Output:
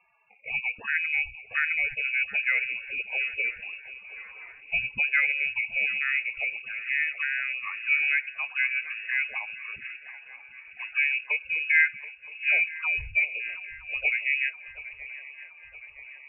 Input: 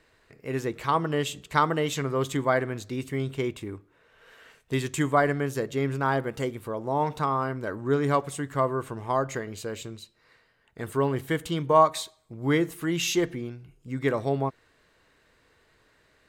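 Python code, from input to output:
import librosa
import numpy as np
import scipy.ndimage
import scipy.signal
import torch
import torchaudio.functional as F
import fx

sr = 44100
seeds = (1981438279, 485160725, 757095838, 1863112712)

y = fx.env_flanger(x, sr, rest_ms=4.1, full_db=-24.5)
y = fx.spec_topn(y, sr, count=32)
y = fx.cheby_harmonics(y, sr, harmonics=(2, 5, 7), levels_db=(-42, -35, -42), full_scale_db=-6.5)
y = fx.echo_swing(y, sr, ms=968, ratio=3, feedback_pct=57, wet_db=-17.0)
y = fx.freq_invert(y, sr, carrier_hz=2700)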